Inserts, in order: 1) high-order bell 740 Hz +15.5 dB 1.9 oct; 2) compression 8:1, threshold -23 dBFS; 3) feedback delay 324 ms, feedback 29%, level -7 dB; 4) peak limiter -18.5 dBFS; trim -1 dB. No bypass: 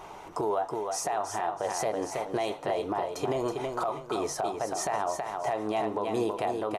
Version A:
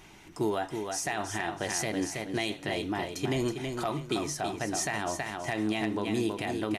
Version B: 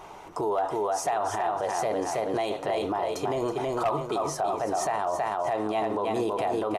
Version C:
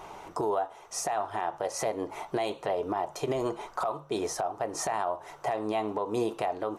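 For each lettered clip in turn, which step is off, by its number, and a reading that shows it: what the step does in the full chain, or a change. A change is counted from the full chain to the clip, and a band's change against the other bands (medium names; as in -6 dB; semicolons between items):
1, 1 kHz band -10.0 dB; 2, mean gain reduction 9.0 dB; 3, momentary loudness spread change +1 LU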